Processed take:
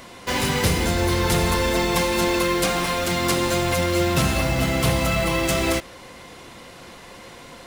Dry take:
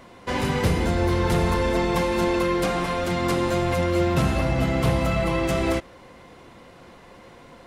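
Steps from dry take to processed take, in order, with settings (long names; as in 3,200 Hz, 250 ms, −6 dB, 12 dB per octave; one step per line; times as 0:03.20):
high-shelf EQ 2,500 Hz +11.5 dB
in parallel at −7.5 dB: wrap-around overflow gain 27.5 dB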